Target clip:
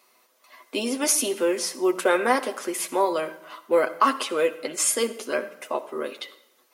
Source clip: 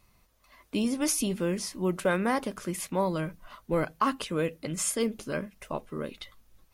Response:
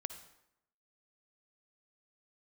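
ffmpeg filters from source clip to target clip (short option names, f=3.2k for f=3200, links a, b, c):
-filter_complex "[0:a]highpass=f=320:w=0.5412,highpass=f=320:w=1.3066,asplit=2[a][b];[1:a]atrim=start_sample=2205,adelay=8[c];[b][c]afir=irnorm=-1:irlink=0,volume=-2.5dB[d];[a][d]amix=inputs=2:normalize=0,volume=6dB"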